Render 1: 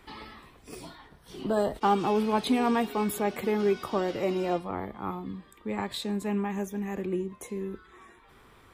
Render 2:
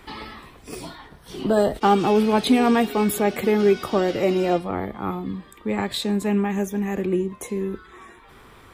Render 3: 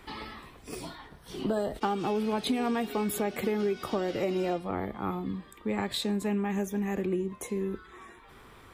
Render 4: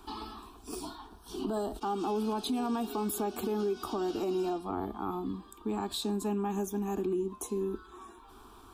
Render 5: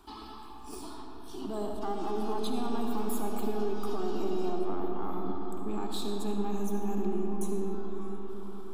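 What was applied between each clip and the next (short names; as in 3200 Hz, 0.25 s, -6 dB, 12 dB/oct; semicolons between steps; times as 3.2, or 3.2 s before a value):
dynamic EQ 1000 Hz, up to -6 dB, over -47 dBFS, Q 3.2; gain +8 dB
compressor 6:1, threshold -21 dBFS, peak gain reduction 9.5 dB; gain -4.5 dB
fixed phaser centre 540 Hz, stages 6; limiter -26.5 dBFS, peak gain reduction 8 dB; gain +2 dB
half-wave gain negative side -3 dB; reverb RT60 5.5 s, pre-delay 30 ms, DRR 0.5 dB; gain -3 dB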